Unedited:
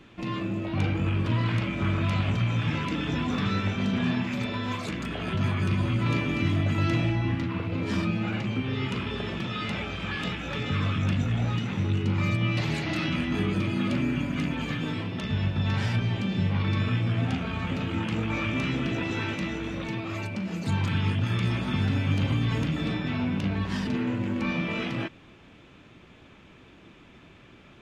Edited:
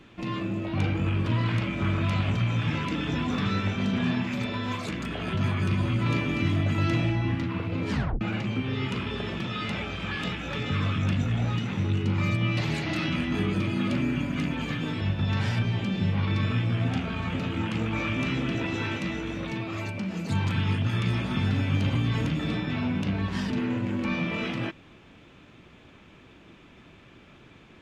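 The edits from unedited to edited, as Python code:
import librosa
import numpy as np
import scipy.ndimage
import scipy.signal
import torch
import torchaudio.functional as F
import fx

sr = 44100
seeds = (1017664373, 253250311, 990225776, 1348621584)

y = fx.edit(x, sr, fx.tape_stop(start_s=7.91, length_s=0.3),
    fx.cut(start_s=15.01, length_s=0.37), tone=tone)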